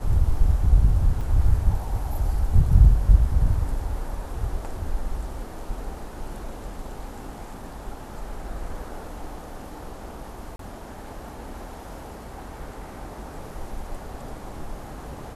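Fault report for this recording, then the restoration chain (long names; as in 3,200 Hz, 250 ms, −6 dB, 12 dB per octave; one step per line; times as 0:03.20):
0:01.21: drop-out 3 ms
0:10.56–0:10.59: drop-out 33 ms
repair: repair the gap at 0:01.21, 3 ms
repair the gap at 0:10.56, 33 ms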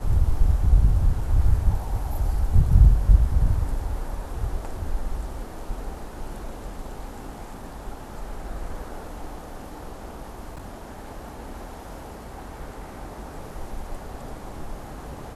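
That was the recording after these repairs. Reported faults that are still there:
none of them is left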